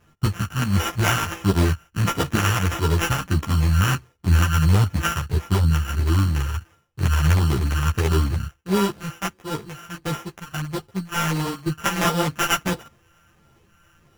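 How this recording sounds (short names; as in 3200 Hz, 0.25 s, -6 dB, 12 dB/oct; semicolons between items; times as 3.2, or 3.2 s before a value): a buzz of ramps at a fixed pitch in blocks of 32 samples; phasing stages 2, 1.5 Hz, lowest notch 320–3700 Hz; aliases and images of a low sample rate 4300 Hz, jitter 0%; a shimmering, thickened sound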